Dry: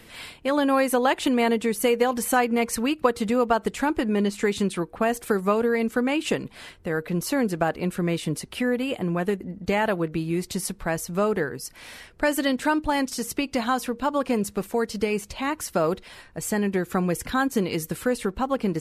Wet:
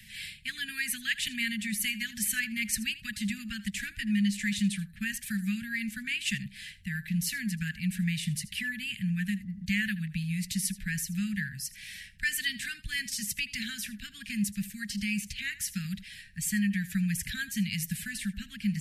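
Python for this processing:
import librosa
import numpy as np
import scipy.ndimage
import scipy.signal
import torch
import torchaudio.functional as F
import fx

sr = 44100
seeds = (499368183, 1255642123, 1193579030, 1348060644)

y = scipy.signal.sosfilt(scipy.signal.cheby1(5, 1.0, [210.0, 1700.0], 'bandstop', fs=sr, output='sos'), x)
y = fx.low_shelf(y, sr, hz=150.0, db=-3.0)
y = y + 10.0 ** (-17.5 / 20.0) * np.pad(y, (int(80 * sr / 1000.0), 0))[:len(y)]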